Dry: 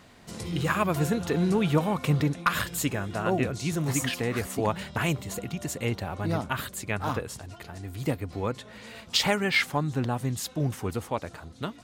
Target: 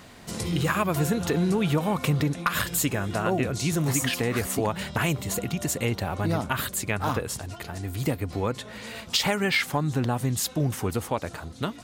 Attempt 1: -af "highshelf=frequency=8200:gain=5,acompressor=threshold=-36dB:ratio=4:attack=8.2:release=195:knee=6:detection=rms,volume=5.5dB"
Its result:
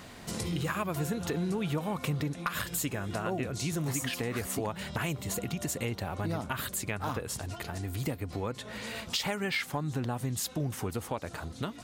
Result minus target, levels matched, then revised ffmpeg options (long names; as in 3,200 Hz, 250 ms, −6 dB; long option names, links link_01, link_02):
downward compressor: peak gain reduction +8 dB
-af "highshelf=frequency=8200:gain=5,acompressor=threshold=-25.5dB:ratio=4:attack=8.2:release=195:knee=6:detection=rms,volume=5.5dB"